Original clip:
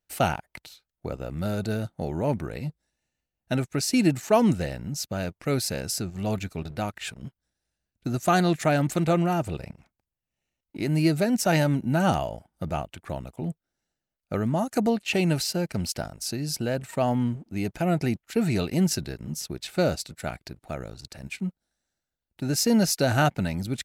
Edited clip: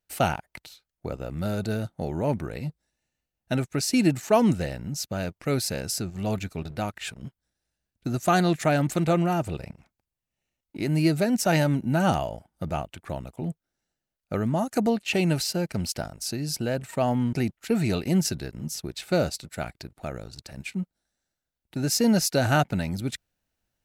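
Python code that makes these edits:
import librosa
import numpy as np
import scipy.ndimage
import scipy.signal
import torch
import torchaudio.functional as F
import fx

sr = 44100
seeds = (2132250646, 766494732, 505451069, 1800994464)

y = fx.edit(x, sr, fx.cut(start_s=17.33, length_s=0.66), tone=tone)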